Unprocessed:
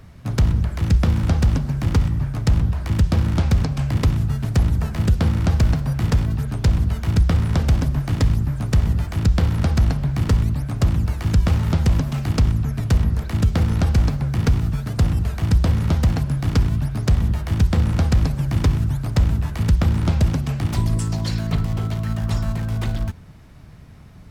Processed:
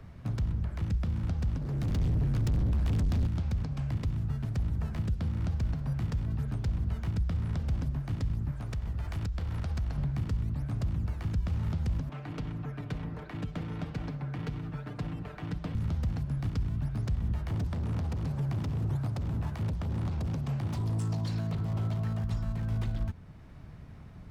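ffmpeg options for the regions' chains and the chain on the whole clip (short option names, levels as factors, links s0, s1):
-filter_complex "[0:a]asettb=1/sr,asplit=3[s0][s1][s2];[s0]atrim=end=1.614[s3];[s1]atrim=start=1.61:end=3.27,asetpts=PTS-STARTPTS,afade=t=in:d=0.004:c=qsin,afade=t=out:st=1.656:d=0.004:c=qsin,asubboost=boost=2.5:cutoff=51,acontrast=77,asoftclip=type=hard:threshold=0.0944[s4];[s2]atrim=start=3.266[s5];[s3][s4]acrossfade=d=0.004:c1=hsin:c2=qsin[s6];[s6][s5]acrossfade=d=0.004:c1=qsin:c2=hsin,asettb=1/sr,asplit=3[s7][s8][s9];[s7]atrim=end=8.514[s10];[s8]atrim=start=8.51:end=9.98,asetpts=PTS-STARTPTS,afade=t=in:d=0.004:c=qsin,afade=t=out:st=1.466:d=0.004:c=qsin,equalizer=f=190:t=o:w=2:g=-7,acompressor=threshold=0.0631:ratio=6:attack=3.2:release=140:knee=1:detection=peak[s11];[s9]atrim=start=9.976[s12];[s10][s11]acrossfade=d=0.004:c1=hsin:c2=qsin[s13];[s13][s12]acrossfade=d=0.004:c1=qsin:c2=hsin,asettb=1/sr,asplit=3[s14][s15][s16];[s14]atrim=end=12.094[s17];[s15]atrim=start=12.09:end=15.75,asetpts=PTS-STARTPTS,afade=t=in:d=0.004:c=qsin,afade=t=out:st=3.656:d=0.004:c=qsin,acrossover=split=230 3200:gain=0.141 1 0.178[s18][s19][s20];[s18][s19][s20]amix=inputs=3:normalize=0,aecho=1:1:6.7:0.62,atrim=end_sample=161406,asoftclip=type=hard:threshold=0.106[s21];[s16]atrim=start=15.746[s22];[s17][s21]acrossfade=d=0.004:c1=hsin:c2=qsin[s23];[s23][s22]acrossfade=d=0.004:c1=qsin:c2=hsin,asettb=1/sr,asplit=3[s24][s25][s26];[s24]atrim=end=17.504[s27];[s25]atrim=start=17.5:end=22.24,asetpts=PTS-STARTPTS,afade=t=in:d=0.004:c=qsin,afade=t=out:st=4.736:d=0.004:c=qsin,highpass=f=75:w=0.5412,highpass=f=75:w=1.3066,asoftclip=type=hard:threshold=0.1,equalizer=f=800:t=o:w=1.9:g=8[s28];[s26]atrim=start=22.236[s29];[s27][s28]acrossfade=d=0.004:c1=hsin:c2=qsin[s30];[s30][s29]acrossfade=d=0.004:c1=qsin:c2=hsin,alimiter=limit=0.119:level=0:latency=1:release=477,acrossover=split=230|3000[s31][s32][s33];[s32]acompressor=threshold=0.0112:ratio=6[s34];[s31][s34][s33]amix=inputs=3:normalize=0,highshelf=f=4000:g=-10.5,volume=0.631"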